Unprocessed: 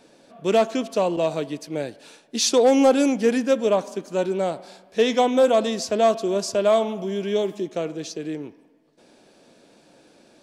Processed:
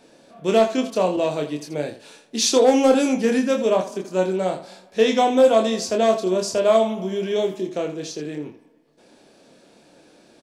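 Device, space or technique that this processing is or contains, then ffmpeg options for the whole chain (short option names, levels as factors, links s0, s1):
slapback doubling: -filter_complex "[0:a]asplit=3[s0][s1][s2];[s1]adelay=27,volume=0.596[s3];[s2]adelay=82,volume=0.266[s4];[s0][s3][s4]amix=inputs=3:normalize=0"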